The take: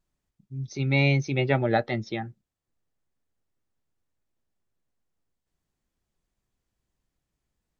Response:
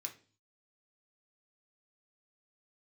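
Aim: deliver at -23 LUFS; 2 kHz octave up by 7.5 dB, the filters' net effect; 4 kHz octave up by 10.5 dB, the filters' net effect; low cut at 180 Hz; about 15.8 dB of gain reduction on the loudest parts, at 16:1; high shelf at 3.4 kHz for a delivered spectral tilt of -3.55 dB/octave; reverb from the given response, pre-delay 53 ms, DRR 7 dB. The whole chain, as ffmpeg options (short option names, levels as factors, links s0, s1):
-filter_complex "[0:a]highpass=180,equalizer=f=2000:t=o:g=4,highshelf=f=3400:g=8.5,equalizer=f=4000:t=o:g=6,acompressor=threshold=0.0316:ratio=16,asplit=2[s0][s1];[1:a]atrim=start_sample=2205,adelay=53[s2];[s1][s2]afir=irnorm=-1:irlink=0,volume=0.631[s3];[s0][s3]amix=inputs=2:normalize=0,volume=3.55"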